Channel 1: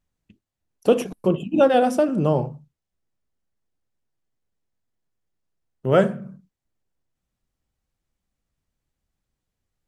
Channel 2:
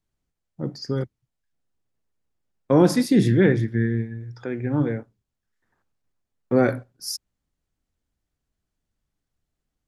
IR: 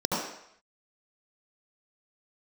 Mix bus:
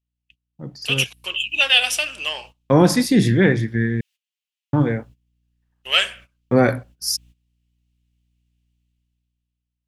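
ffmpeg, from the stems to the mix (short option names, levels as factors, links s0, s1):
-filter_complex "[0:a]acontrast=38,highpass=f=2800:t=q:w=3.7,volume=0.631[s0];[1:a]adynamicequalizer=threshold=0.0178:dfrequency=110:dqfactor=0.99:tfrequency=110:tqfactor=0.99:attack=5:release=100:ratio=0.375:range=3:mode=cutabove:tftype=bell,aeval=exprs='val(0)+0.00126*(sin(2*PI*60*n/s)+sin(2*PI*2*60*n/s)/2+sin(2*PI*3*60*n/s)/3+sin(2*PI*4*60*n/s)/4+sin(2*PI*5*60*n/s)/5)':c=same,equalizer=f=360:w=0.9:g=-6.5,volume=0.562,asplit=3[s1][s2][s3];[s1]atrim=end=4.01,asetpts=PTS-STARTPTS,afade=t=out:st=4.006:d=0.004:c=hsin[s4];[s2]atrim=start=4.01:end=4.73,asetpts=PTS-STARTPTS,volume=0[s5];[s3]atrim=start=4.73,asetpts=PTS-STARTPTS,afade=t=in:d=0.004:c=hsin[s6];[s4][s5][s6]concat=n=3:v=0:a=1[s7];[s0][s7]amix=inputs=2:normalize=0,agate=range=0.141:threshold=0.002:ratio=16:detection=peak,equalizer=f=1400:t=o:w=0.24:g=-3.5,dynaudnorm=f=150:g=13:m=5.62"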